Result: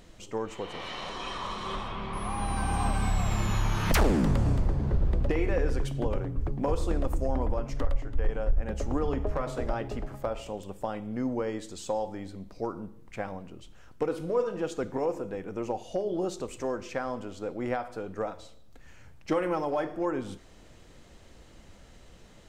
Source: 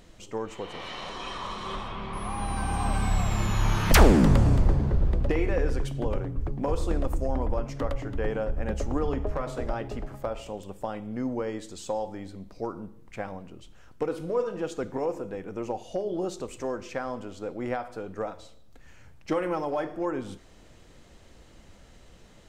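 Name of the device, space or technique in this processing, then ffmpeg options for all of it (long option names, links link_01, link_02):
clipper into limiter: -filter_complex "[0:a]asplit=3[link_01][link_02][link_03];[link_01]afade=type=out:start_time=7.71:duration=0.02[link_04];[link_02]asubboost=boost=5:cutoff=67,afade=type=in:start_time=7.71:duration=0.02,afade=type=out:start_time=8.59:duration=0.02[link_05];[link_03]afade=type=in:start_time=8.59:duration=0.02[link_06];[link_04][link_05][link_06]amix=inputs=3:normalize=0,asoftclip=type=hard:threshold=-10.5dB,alimiter=limit=-16.5dB:level=0:latency=1:release=363"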